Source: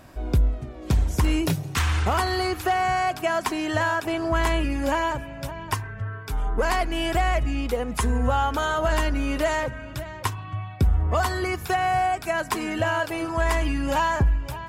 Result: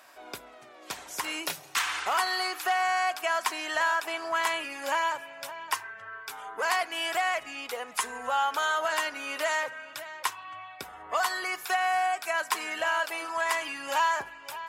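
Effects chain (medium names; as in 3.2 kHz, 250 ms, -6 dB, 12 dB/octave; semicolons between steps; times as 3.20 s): high-pass 880 Hz 12 dB/octave; reverberation, pre-delay 7 ms, DRR 18.5 dB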